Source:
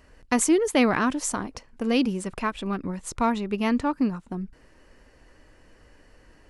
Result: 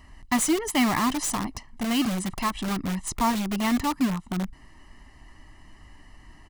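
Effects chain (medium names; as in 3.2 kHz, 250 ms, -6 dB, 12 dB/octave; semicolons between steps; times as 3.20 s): comb 1 ms, depth 99%; in parallel at -3 dB: integer overflow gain 22.5 dB; on the sum: trim -4 dB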